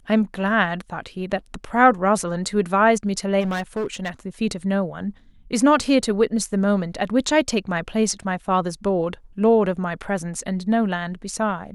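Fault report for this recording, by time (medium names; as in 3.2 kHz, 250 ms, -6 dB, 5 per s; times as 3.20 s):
3.40–4.09 s: clipped -21 dBFS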